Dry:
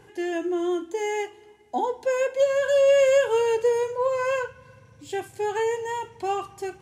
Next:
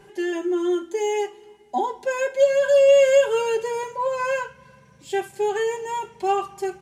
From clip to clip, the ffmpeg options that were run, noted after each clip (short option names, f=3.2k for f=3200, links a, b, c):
-af "aecho=1:1:5.1:0.85"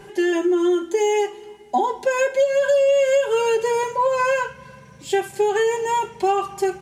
-af "acompressor=threshold=-23dB:ratio=6,volume=7.5dB"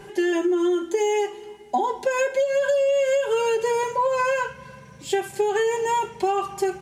-af "acompressor=threshold=-18dB:ratio=6"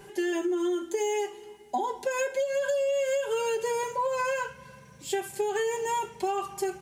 -af "crystalizer=i=1:c=0,volume=-6.5dB"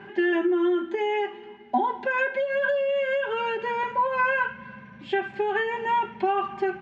-af "highpass=100,equalizer=f=150:t=q:w=4:g=-6,equalizer=f=220:t=q:w=4:g=10,equalizer=f=480:t=q:w=4:g=-10,equalizer=f=1.6k:t=q:w=4:g=5,lowpass=f=2.9k:w=0.5412,lowpass=f=2.9k:w=1.3066,volume=6dB"